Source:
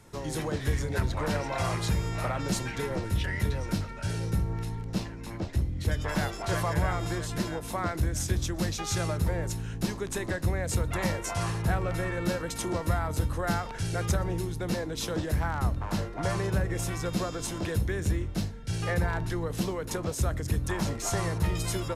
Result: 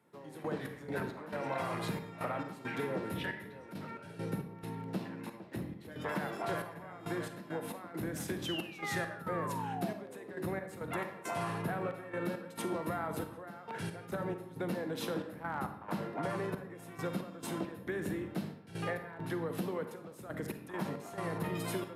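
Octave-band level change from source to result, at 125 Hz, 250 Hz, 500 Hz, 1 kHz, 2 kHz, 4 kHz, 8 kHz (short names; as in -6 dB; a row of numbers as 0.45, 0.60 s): -13.5, -6.0, -5.0, -5.0, -6.0, -9.0, -14.5 dB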